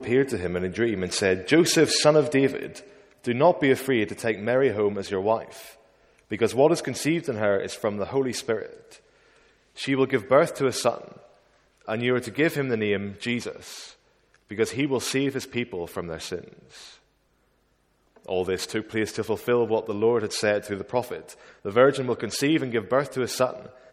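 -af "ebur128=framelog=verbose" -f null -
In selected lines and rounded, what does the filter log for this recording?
Integrated loudness:
  I:         -24.5 LUFS
  Threshold: -35.7 LUFS
Loudness range:
  LRA:         7.6 LU
  Threshold: -46.0 LUFS
  LRA low:   -29.9 LUFS
  LRA high:  -22.3 LUFS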